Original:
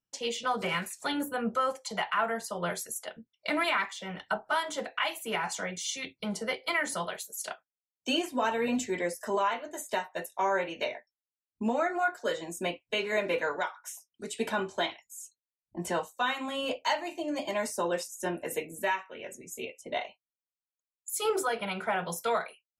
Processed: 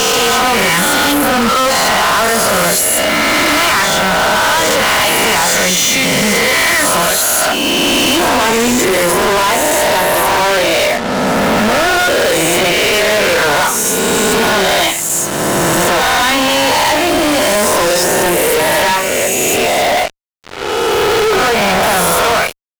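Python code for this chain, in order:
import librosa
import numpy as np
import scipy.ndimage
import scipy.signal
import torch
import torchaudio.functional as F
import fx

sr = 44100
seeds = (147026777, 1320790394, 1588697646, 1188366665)

y = fx.spec_swells(x, sr, rise_s=1.73)
y = fx.bessel_lowpass(y, sr, hz=2500.0, order=8, at=(19.87, 21.83))
y = fx.fuzz(y, sr, gain_db=47.0, gate_db=-45.0)
y = y * librosa.db_to_amplitude(2.5)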